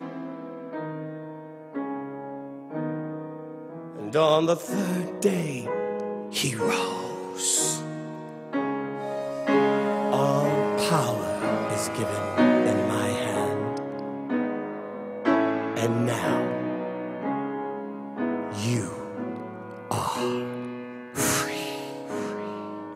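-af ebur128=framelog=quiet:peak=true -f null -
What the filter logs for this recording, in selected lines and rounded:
Integrated loudness:
  I:         -27.1 LUFS
  Threshold: -37.4 LUFS
Loudness range:
  LRA:         6.2 LU
  Threshold: -47.0 LUFS
  LRA low:   -30.7 LUFS
  LRA high:  -24.5 LUFS
True peak:
  Peak:       -7.3 dBFS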